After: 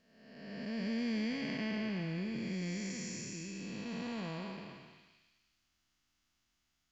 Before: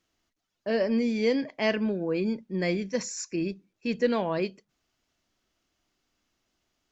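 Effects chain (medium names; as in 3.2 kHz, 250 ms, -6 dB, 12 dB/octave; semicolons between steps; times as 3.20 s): spectral blur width 667 ms; peaking EQ 480 Hz -13 dB 1.5 oct; on a send: repeats whose band climbs or falls 175 ms, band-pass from 980 Hz, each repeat 0.7 oct, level -7.5 dB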